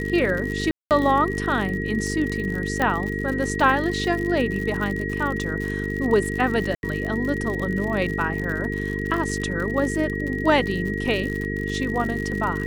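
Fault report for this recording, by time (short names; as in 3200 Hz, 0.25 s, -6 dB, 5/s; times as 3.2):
buzz 50 Hz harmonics 9 -28 dBFS
crackle 84/s -28 dBFS
tone 1900 Hz -30 dBFS
0.71–0.91 gap 0.198 s
2.82 pop -9 dBFS
6.75–6.83 gap 81 ms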